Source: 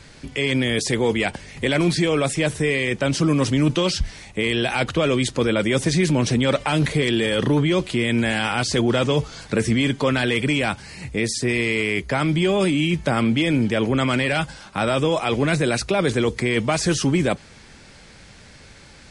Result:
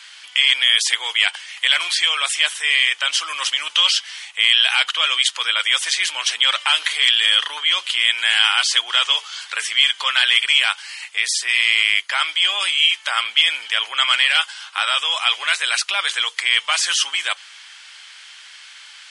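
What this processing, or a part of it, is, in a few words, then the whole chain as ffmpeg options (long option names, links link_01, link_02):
headphones lying on a table: -af "highpass=frequency=1100:width=0.5412,highpass=frequency=1100:width=1.3066,equalizer=frequency=3100:width_type=o:width=0.32:gain=11,volume=5.5dB"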